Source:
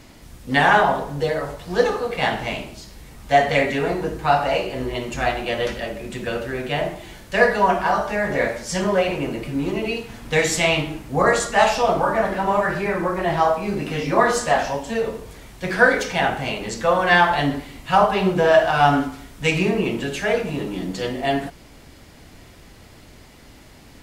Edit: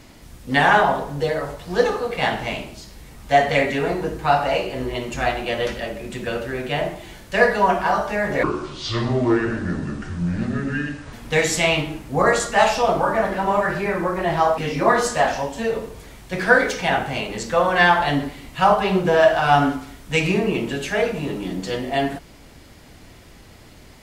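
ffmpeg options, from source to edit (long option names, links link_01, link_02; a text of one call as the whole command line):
ffmpeg -i in.wav -filter_complex "[0:a]asplit=4[link_01][link_02][link_03][link_04];[link_01]atrim=end=8.434[link_05];[link_02]atrim=start=8.43:end=10.13,asetpts=PTS-STARTPTS,asetrate=27783,aresample=44100[link_06];[link_03]atrim=start=10.126:end=13.582[link_07];[link_04]atrim=start=13.888[link_08];[link_05][link_06]acrossfade=duration=0.004:curve1=hsin:curve2=hsin[link_09];[link_09][link_07]acrossfade=duration=0.004:curve1=hsin:curve2=hsin[link_10];[link_10][link_08]acrossfade=duration=0.004:curve1=hsin:curve2=hsin" out.wav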